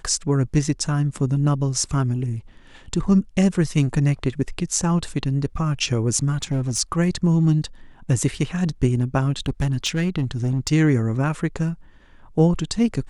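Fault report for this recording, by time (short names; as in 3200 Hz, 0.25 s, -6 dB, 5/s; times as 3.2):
6.37–6.8 clipped -17.5 dBFS
9.46–10.71 clipped -16.5 dBFS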